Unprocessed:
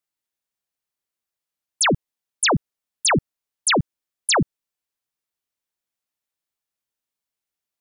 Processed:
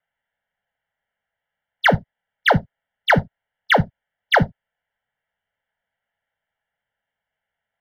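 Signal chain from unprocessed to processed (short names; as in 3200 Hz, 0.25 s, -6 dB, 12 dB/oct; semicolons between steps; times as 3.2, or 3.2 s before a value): steep low-pass 3000 Hz 72 dB/oct; low shelf 470 Hz -5.5 dB; in parallel at -3 dB: negative-ratio compressor -32 dBFS, ratio -1; on the sum: sample leveller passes 1; fixed phaser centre 1700 Hz, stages 8; on a send at -11.5 dB: reverb, pre-delay 3 ms; on the sum: gain +6.5 dB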